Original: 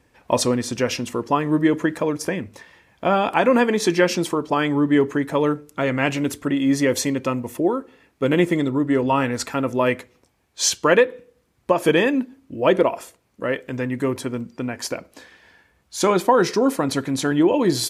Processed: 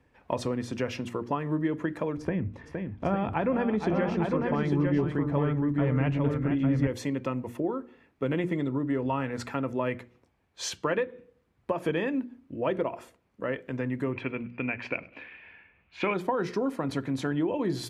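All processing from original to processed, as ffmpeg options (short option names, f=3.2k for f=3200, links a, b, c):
-filter_complex "[0:a]asettb=1/sr,asplit=3[a][b][c];[a]atrim=end=2.174[d];[b]atrim=start=2.17:end=6.87,asetpts=PTS-STARTPTS,afade=t=in:d=0.004:c=qsin,afade=t=out:st=4.696:d=0.004:c=qsin,aemphasis=mode=reproduction:type=bsi,aecho=1:1:465|852:0.398|0.631,atrim=end_sample=207270[e];[c]atrim=start=6.866[f];[d][e]acrossfade=d=0.004:c1=hsin:c2=qsin[g];[g][f]acrossfade=d=0.004:c1=qsin:c2=hsin,asettb=1/sr,asplit=3[h][i][j];[h]atrim=end=14.134[k];[i]atrim=start=14.13:end=16.14,asetpts=PTS-STARTPTS,afade=t=in:d=0.004:c=qsin,afade=t=out:st=2.006:d=0.004:c=qsin,lowpass=f=2.5k:t=q:w=8.3,aecho=1:1:99|198:0.0708|0.0255,atrim=end_sample=88641[l];[j]atrim=start=16.136[m];[k][l]acrossfade=d=0.004:c1=hsin:c2=qsin[n];[n][m]acrossfade=d=0.004:c1=qsin:c2=hsin,bass=f=250:g=3,treble=f=4k:g=-12,bandreject=f=60:t=h:w=6,bandreject=f=120:t=h:w=6,bandreject=f=180:t=h:w=6,bandreject=f=240:t=h:w=6,bandreject=f=300:t=h:w=6,bandreject=f=360:t=h:w=6,acrossover=split=120[o][p];[p]acompressor=threshold=-22dB:ratio=2.5[q];[o][q]amix=inputs=2:normalize=0,volume=-5.5dB"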